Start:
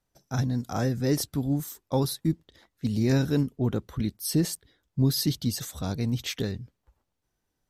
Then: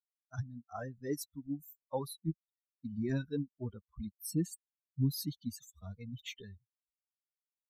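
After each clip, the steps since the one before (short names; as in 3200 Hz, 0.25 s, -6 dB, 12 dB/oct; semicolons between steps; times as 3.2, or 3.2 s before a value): per-bin expansion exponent 3; dynamic EQ 4800 Hz, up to -5 dB, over -51 dBFS, Q 1.5; gain -5 dB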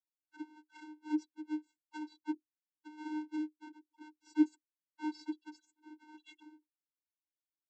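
half-waves squared off; vocoder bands 32, square 306 Hz; gain -4 dB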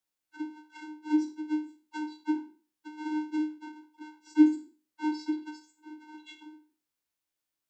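spectral trails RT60 0.38 s; gain +7 dB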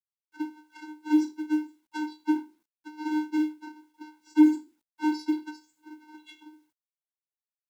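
G.711 law mismatch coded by A; soft clip -15.5 dBFS, distortion -14 dB; gain +5.5 dB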